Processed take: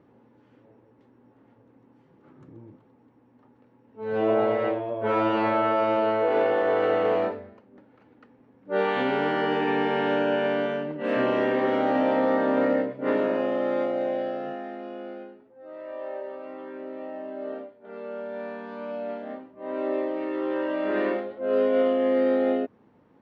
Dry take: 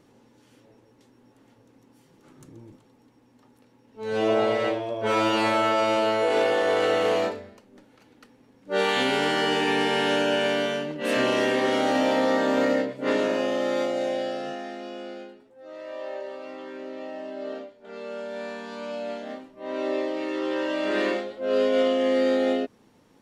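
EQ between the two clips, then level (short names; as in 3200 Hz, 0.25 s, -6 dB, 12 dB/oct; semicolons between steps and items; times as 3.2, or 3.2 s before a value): HPF 54 Hz; LPF 1700 Hz 12 dB/oct; 0.0 dB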